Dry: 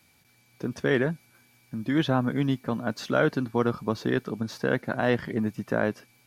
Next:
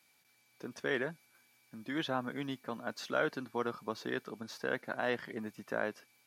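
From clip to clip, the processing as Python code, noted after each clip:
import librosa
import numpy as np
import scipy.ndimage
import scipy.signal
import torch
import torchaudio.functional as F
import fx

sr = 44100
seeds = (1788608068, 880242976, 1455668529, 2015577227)

y = fx.highpass(x, sr, hz=580.0, slope=6)
y = y * 10.0 ** (-6.0 / 20.0)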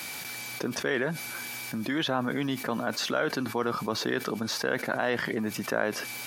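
y = fx.env_flatten(x, sr, amount_pct=70)
y = y * 10.0 ** (3.0 / 20.0)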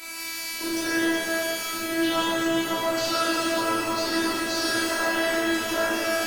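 y = fx.robotise(x, sr, hz=330.0)
y = fx.rev_shimmer(y, sr, seeds[0], rt60_s=3.4, semitones=12, shimmer_db=-8, drr_db=-9.5)
y = y * 10.0 ** (-2.5 / 20.0)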